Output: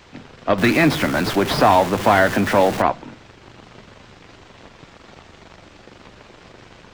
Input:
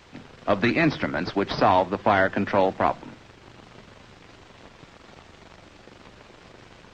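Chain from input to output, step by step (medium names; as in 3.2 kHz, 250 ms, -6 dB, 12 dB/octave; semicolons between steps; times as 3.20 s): 0.58–2.82 s: jump at every zero crossing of -26 dBFS; trim +4 dB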